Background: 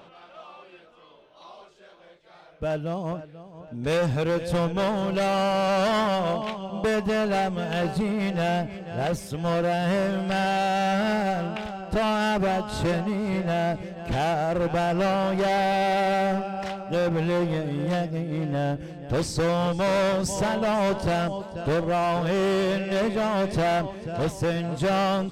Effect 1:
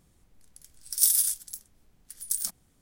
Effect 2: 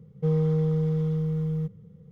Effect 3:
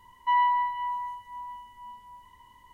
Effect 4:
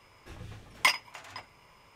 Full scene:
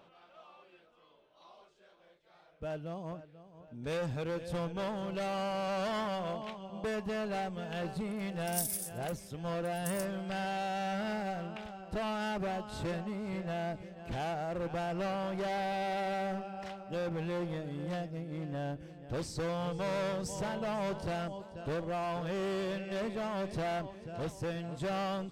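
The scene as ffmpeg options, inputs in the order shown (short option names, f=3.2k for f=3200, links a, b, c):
-filter_complex "[0:a]volume=-11.5dB[a];[2:a]highpass=f=410:p=1[b];[1:a]atrim=end=2.81,asetpts=PTS-STARTPTS,volume=-13.5dB,afade=t=in:d=0.004:c=hsin,afade=t=out:st=2.806:d=0.004:c=hsin,adelay=7550[c];[b]atrim=end=2.11,asetpts=PTS-STARTPTS,volume=-15.5dB,afade=t=in:d=0.004:c=hsin,afade=t=out:st=2.106:d=0.004:c=hsin,adelay=19430[d];[a][c][d]amix=inputs=3:normalize=0"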